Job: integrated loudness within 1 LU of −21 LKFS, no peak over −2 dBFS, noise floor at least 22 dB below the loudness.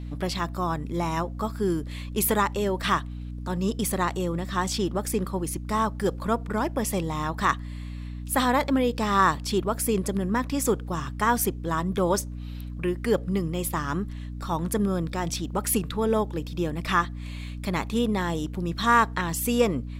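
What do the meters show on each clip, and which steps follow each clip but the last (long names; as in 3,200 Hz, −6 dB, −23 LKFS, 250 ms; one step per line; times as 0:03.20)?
mains hum 60 Hz; hum harmonics up to 300 Hz; level of the hum −33 dBFS; integrated loudness −26.5 LKFS; sample peak −8.5 dBFS; target loudness −21.0 LKFS
→ mains-hum notches 60/120/180/240/300 Hz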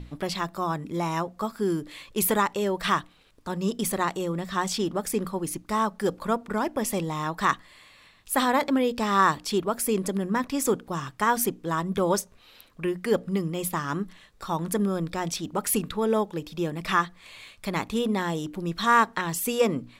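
mains hum none found; integrated loudness −27.0 LKFS; sample peak −9.0 dBFS; target loudness −21.0 LKFS
→ level +6 dB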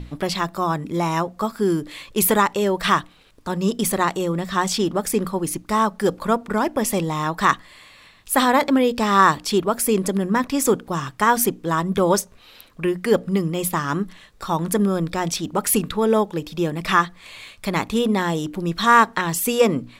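integrated loudness −21.0 LKFS; sample peak −3.0 dBFS; background noise floor −50 dBFS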